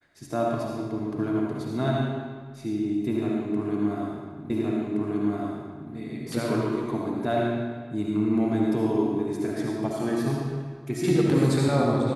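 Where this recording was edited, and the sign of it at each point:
0:04.50: the same again, the last 1.42 s

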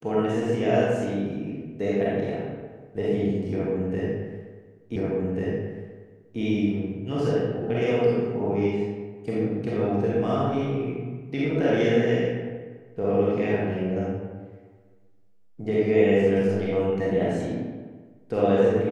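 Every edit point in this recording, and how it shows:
0:04.96: the same again, the last 1.44 s

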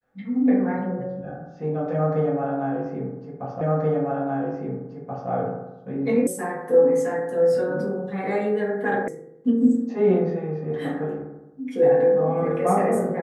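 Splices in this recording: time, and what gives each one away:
0:03.61: the same again, the last 1.68 s
0:06.27: cut off before it has died away
0:09.08: cut off before it has died away

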